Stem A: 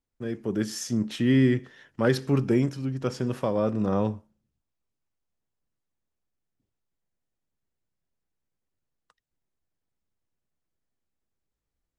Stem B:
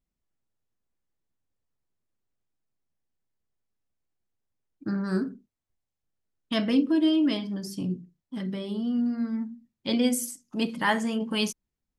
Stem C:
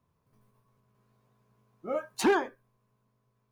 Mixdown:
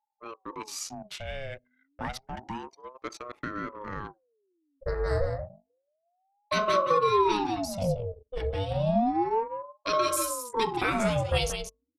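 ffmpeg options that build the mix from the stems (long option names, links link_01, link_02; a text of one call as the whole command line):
ffmpeg -i stem1.wav -i stem2.wav -filter_complex "[0:a]acompressor=threshold=-23dB:ratio=3,highpass=200,lowshelf=frequency=460:gain=-12,volume=-4dB[link_01];[1:a]bandreject=frequency=49.93:width_type=h:width=4,bandreject=frequency=99.86:width_type=h:width=4,bandreject=frequency=149.79:width_type=h:width=4,bandreject=frequency=199.72:width_type=h:width=4,bandreject=frequency=249.65:width_type=h:width=4,bandreject=frequency=299.58:width_type=h:width=4,bandreject=frequency=349.51:width_type=h:width=4,bandreject=frequency=399.44:width_type=h:width=4,bandreject=frequency=449.37:width_type=h:width=4,bandreject=frequency=499.3:width_type=h:width=4,bandreject=frequency=549.23:width_type=h:width=4,bandreject=frequency=599.16:width_type=h:width=4,bandreject=frequency=649.09:width_type=h:width=4,bandreject=frequency=699.02:width_type=h:width=4,bandreject=frequency=748.95:width_type=h:width=4,bandreject=frequency=798.88:width_type=h:width=4,bandreject=frequency=848.81:width_type=h:width=4,alimiter=limit=-19.5dB:level=0:latency=1:release=103,volume=0dB,asplit=2[link_02][link_03];[link_03]volume=-7.5dB,aecho=0:1:177:1[link_04];[link_01][link_02][link_04]amix=inputs=3:normalize=0,anlmdn=0.0398,acontrast=31,aeval=exprs='val(0)*sin(2*PI*550*n/s+550*0.55/0.3*sin(2*PI*0.3*n/s))':channel_layout=same" out.wav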